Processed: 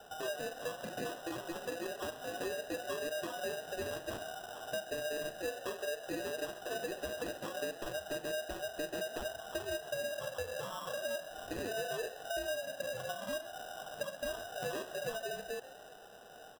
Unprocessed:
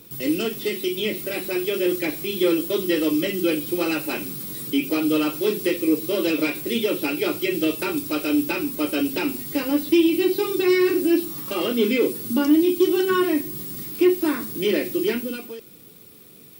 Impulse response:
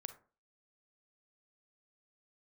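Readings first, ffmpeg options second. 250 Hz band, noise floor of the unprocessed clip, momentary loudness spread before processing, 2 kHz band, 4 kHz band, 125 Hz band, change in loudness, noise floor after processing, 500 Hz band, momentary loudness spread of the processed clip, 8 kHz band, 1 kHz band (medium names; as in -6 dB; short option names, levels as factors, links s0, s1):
-27.0 dB, -47 dBFS, 7 LU, -11.5 dB, -14.0 dB, -15.0 dB, -17.5 dB, -53 dBFS, -15.0 dB, 4 LU, -10.5 dB, -9.5 dB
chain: -filter_complex "[0:a]afftfilt=real='real(if(lt(b,960),b+48*(1-2*mod(floor(b/48),2)),b),0)':imag='imag(if(lt(b,960),b+48*(1-2*mod(floor(b/48),2)),b),0)':win_size=2048:overlap=0.75,bandreject=f=1400:w=16,acompressor=threshold=0.02:ratio=12,highpass=f=190:t=q:w=0.5412,highpass=f=190:t=q:w=1.307,lowpass=f=3000:t=q:w=0.5176,lowpass=f=3000:t=q:w=0.7071,lowpass=f=3000:t=q:w=1.932,afreqshift=260,acrusher=samples=20:mix=1:aa=0.000001,asplit=4[s0][s1][s2][s3];[s1]adelay=132,afreqshift=69,volume=0.158[s4];[s2]adelay=264,afreqshift=138,volume=0.0589[s5];[s3]adelay=396,afreqshift=207,volume=0.0216[s6];[s0][s4][s5][s6]amix=inputs=4:normalize=0,volume=0.891"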